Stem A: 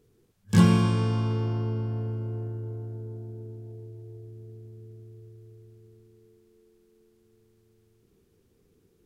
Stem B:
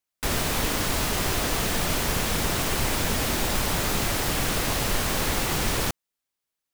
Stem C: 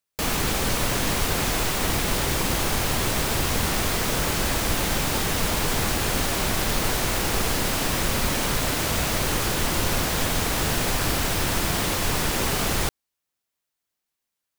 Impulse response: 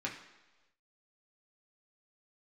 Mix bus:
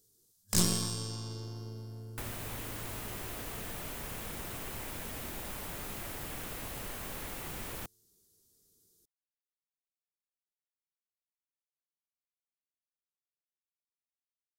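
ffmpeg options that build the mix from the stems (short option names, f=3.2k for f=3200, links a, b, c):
-filter_complex "[0:a]aexciter=amount=8.4:drive=8.1:freq=3.8k,aeval=exprs='1.26*(cos(1*acos(clip(val(0)/1.26,-1,1)))-cos(1*PI/2))+0.282*(cos(6*acos(clip(val(0)/1.26,-1,1)))-cos(6*PI/2))':c=same,volume=-14.5dB[a];[1:a]equalizer=f=5k:t=o:w=1.7:g=-10,acrossover=split=210|2200[b][c][d];[b]acompressor=threshold=-40dB:ratio=4[e];[c]acompressor=threshold=-41dB:ratio=4[f];[d]acompressor=threshold=-36dB:ratio=4[g];[e][f][g]amix=inputs=3:normalize=0,adelay=1950,volume=-6dB[h];[a][h]amix=inputs=2:normalize=0"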